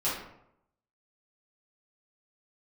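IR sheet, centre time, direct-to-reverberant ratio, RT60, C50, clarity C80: 50 ms, -11.0 dB, 0.80 s, 2.5 dB, 6.5 dB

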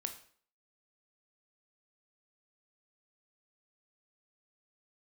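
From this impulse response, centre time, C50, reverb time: 12 ms, 10.5 dB, 0.50 s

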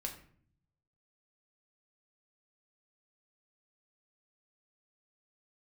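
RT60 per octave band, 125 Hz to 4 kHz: 1.2 s, 0.95 s, 0.60 s, 0.50 s, 0.45 s, 0.35 s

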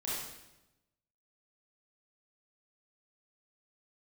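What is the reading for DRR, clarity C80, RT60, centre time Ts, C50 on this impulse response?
-8.5 dB, 2.0 dB, 0.95 s, 81 ms, -2.0 dB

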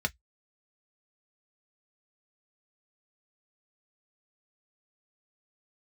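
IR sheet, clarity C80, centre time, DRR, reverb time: 51.0 dB, 4 ms, 5.0 dB, 0.10 s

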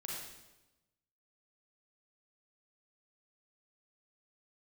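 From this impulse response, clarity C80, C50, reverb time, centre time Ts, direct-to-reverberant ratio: 2.0 dB, -1.0 dB, 1.0 s, 74 ms, -4.0 dB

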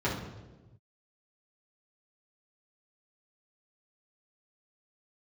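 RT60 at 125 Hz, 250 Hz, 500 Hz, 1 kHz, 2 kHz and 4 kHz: 1.8 s, 1.4 s, 1.3 s, 1.0 s, 0.85 s, 0.85 s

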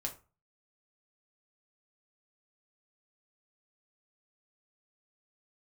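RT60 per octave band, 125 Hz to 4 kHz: 0.50 s, 0.35 s, 0.30 s, 0.35 s, 0.25 s, 0.20 s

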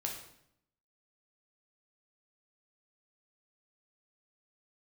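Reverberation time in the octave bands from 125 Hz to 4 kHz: 0.95 s, 0.90 s, 0.75 s, 0.70 s, 0.65 s, 0.60 s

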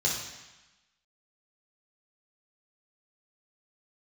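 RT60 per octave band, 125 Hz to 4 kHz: 1.0 s, 1.1 s, 0.95 s, 1.2 s, 1.2 s, 1.1 s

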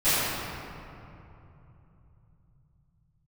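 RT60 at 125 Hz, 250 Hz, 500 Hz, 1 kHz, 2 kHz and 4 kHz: 6.7 s, 4.3 s, 3.0 s, 2.9 s, 2.2 s, 1.5 s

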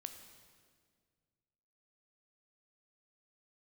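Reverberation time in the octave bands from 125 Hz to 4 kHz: 2.6 s, 2.3 s, 2.1 s, 1.7 s, 1.6 s, 1.5 s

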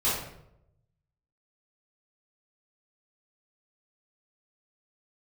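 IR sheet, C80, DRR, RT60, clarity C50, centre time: 5.5 dB, -11.0 dB, 0.80 s, 1.5 dB, 56 ms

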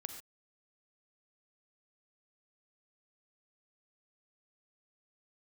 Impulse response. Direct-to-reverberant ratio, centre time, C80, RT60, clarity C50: 6.5 dB, 17 ms, 9.0 dB, no single decay rate, 7.0 dB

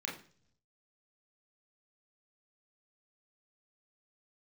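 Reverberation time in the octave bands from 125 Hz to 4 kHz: 1.1 s, 0.80 s, 0.60 s, 0.40 s, 0.45 s, 0.55 s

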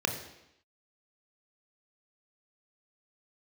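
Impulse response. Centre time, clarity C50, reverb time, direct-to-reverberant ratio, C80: 21 ms, 8.5 dB, 0.85 s, 3.5 dB, 10.0 dB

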